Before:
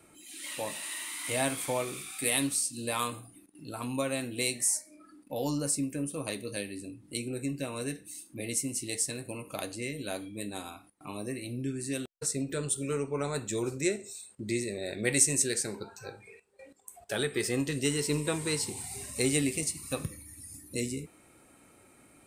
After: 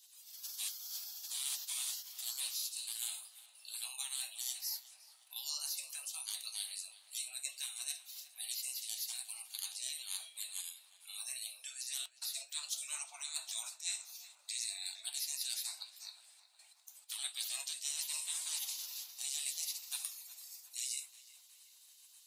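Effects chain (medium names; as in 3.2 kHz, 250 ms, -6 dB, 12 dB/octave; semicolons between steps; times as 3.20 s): spectral gate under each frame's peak -20 dB weak; steep high-pass 670 Hz 48 dB/octave; resonant high shelf 2.7 kHz +12.5 dB, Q 1.5; reverse; compression 12:1, threshold -31 dBFS, peak gain reduction 14 dB; reverse; flange 1.3 Hz, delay 3.7 ms, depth 2.8 ms, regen +73%; tape echo 362 ms, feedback 73%, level -13 dB, low-pass 2.5 kHz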